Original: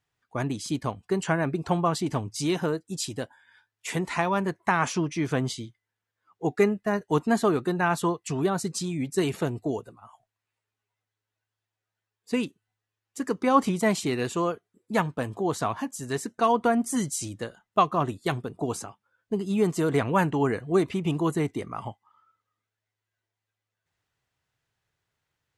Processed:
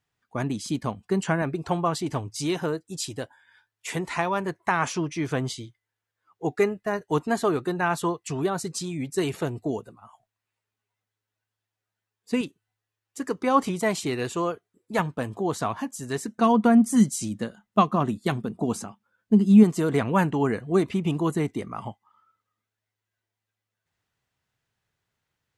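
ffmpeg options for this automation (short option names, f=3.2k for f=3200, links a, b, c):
-af "asetnsamples=n=441:p=0,asendcmd='1.42 equalizer g -5.5;9.57 equalizer g 4;12.41 equalizer g -4.5;14.99 equalizer g 2.5;16.28 equalizer g 14.5;19.63 equalizer g 5.5',equalizer=f=210:t=o:w=0.4:g=6"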